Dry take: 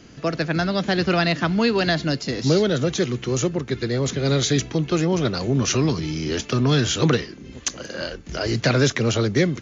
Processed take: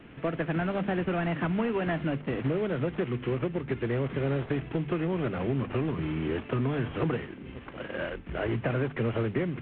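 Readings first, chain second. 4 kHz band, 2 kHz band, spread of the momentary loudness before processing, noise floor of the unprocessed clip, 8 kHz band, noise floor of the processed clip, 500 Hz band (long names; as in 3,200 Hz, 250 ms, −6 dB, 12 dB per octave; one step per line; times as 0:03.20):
−20.0 dB, −9.5 dB, 9 LU, −42 dBFS, can't be measured, −45 dBFS, −7.5 dB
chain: variable-slope delta modulation 16 kbit/s
mains-hum notches 50/100/150/200/250 Hz
downward compressor, threshold −23 dBFS, peak gain reduction 8.5 dB
level −2 dB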